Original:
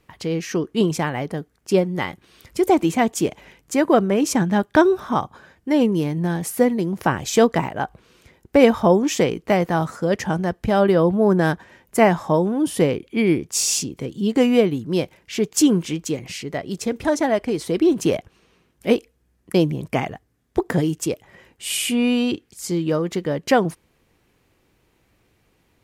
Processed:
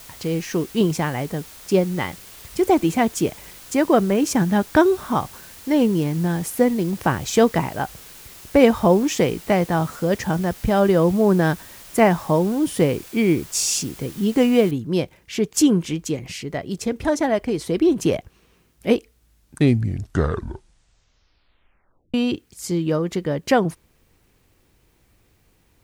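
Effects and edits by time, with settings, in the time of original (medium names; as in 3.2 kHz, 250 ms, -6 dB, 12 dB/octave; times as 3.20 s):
14.71 s: noise floor step -42 dB -68 dB
18.97 s: tape stop 3.17 s
whole clip: bass shelf 87 Hz +10 dB; trim -1 dB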